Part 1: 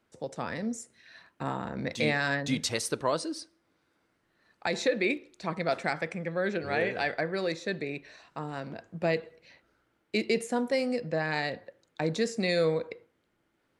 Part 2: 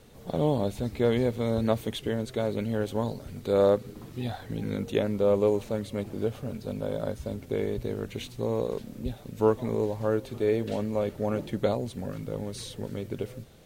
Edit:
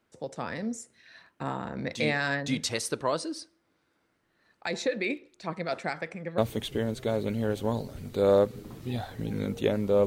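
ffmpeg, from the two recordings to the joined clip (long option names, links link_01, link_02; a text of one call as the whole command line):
ffmpeg -i cue0.wav -i cue1.wav -filter_complex "[0:a]asettb=1/sr,asplit=3[link_01][link_02][link_03];[link_01]atrim=end=4.614[link_04];[link_02]atrim=start=4.61:end=6.38,asetpts=PTS-STARTPTS,afade=type=in:duration=0.004:curve=qsin,afade=type=out:start_time=1.766:duration=0.004:curve=qsin,acrossover=split=1300[link_05][link_06];[link_05]aeval=exprs='val(0)*(1-0.5/2+0.5/2*cos(2*PI*7.9*n/s))':channel_layout=same[link_07];[link_06]aeval=exprs='val(0)*(1-0.5/2-0.5/2*cos(2*PI*7.9*n/s))':channel_layout=same[link_08];[link_07][link_08]amix=inputs=2:normalize=0[link_09];[link_03]atrim=start=6.376[link_10];[link_04][link_09]acrossfade=duration=0.004:curve1=hsin:curve2=qsin[link_11];[link_11][link_10]acrossfade=duration=0.004:curve1=qsin:curve2=hsin,apad=whole_dur=10.06,atrim=end=10.06,atrim=end=6.382[link_12];[1:a]atrim=start=1.688:end=5.37[link_13];[link_12][link_13]acrossfade=duration=0.004:curve1=hsin:curve2=hsin" out.wav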